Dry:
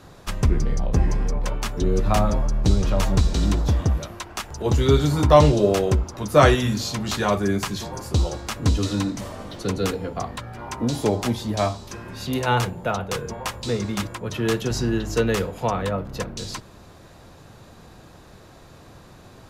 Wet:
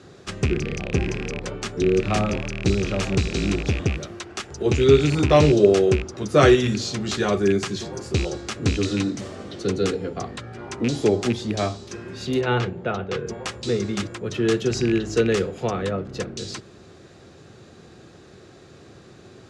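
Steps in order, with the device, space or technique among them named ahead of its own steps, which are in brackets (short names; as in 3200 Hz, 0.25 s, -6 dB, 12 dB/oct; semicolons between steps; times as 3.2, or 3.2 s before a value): car door speaker with a rattle (rattling part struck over -19 dBFS, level -18 dBFS; speaker cabinet 88–8300 Hz, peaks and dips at 380 Hz +8 dB, 630 Hz -3 dB, 960 Hz -10 dB); 12.41–13.27 LPF 3600 Hz 12 dB/oct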